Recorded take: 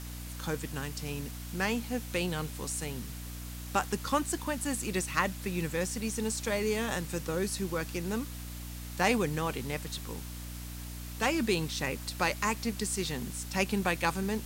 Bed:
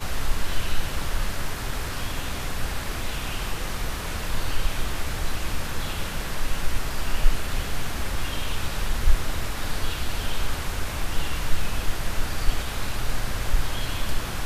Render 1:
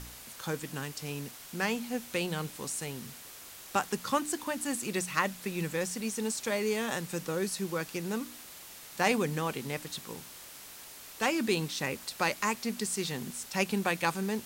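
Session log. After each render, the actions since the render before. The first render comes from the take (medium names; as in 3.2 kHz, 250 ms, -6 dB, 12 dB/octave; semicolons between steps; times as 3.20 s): de-hum 60 Hz, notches 5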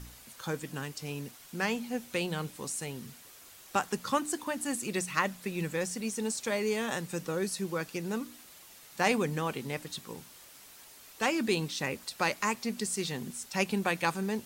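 noise reduction 6 dB, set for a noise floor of -49 dBFS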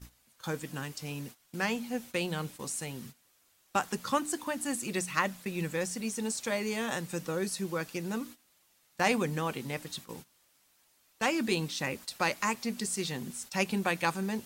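gate -45 dBFS, range -15 dB; band-stop 420 Hz, Q 12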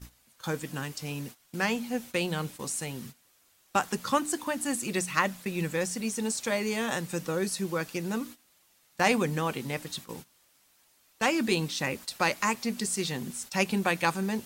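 trim +3 dB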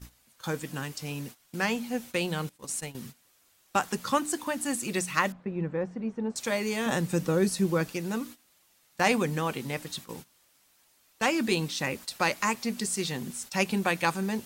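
2.49–2.95 s: gate -36 dBFS, range -16 dB; 5.32–6.36 s: low-pass 1.1 kHz; 6.86–7.93 s: bass shelf 490 Hz +8 dB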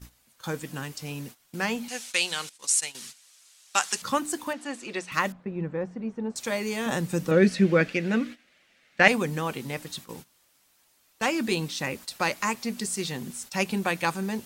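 1.88–4.02 s: frequency weighting ITU-R 468; 4.53–5.12 s: band-pass 330–4300 Hz; 7.31–9.08 s: FFT filter 130 Hz 0 dB, 230 Hz +8 dB, 340 Hz +4 dB, 580 Hz +8 dB, 970 Hz -3 dB, 1.6 kHz +10 dB, 2.2 kHz +12 dB, 3.8 kHz +3 dB, 7.5 kHz -7 dB, 14 kHz -18 dB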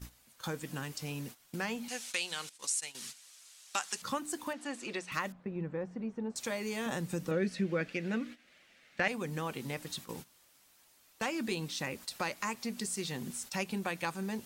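compression 2:1, threshold -39 dBFS, peak gain reduction 15 dB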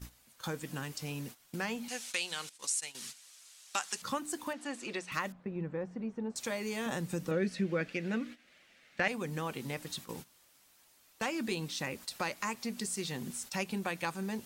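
no audible change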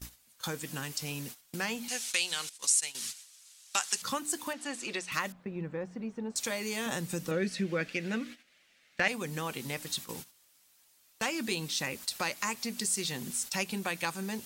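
gate -55 dBFS, range -7 dB; treble shelf 2.3 kHz +8 dB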